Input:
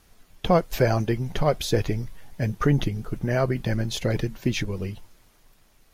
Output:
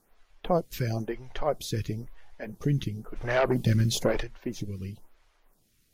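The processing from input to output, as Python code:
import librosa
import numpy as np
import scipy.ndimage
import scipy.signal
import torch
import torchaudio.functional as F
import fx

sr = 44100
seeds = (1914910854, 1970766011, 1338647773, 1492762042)

y = fx.fold_sine(x, sr, drive_db=6, ceiling_db=-11.0, at=(3.15, 4.22), fade=0.02)
y = fx.stagger_phaser(y, sr, hz=1.0)
y = F.gain(torch.from_numpy(y), -4.5).numpy()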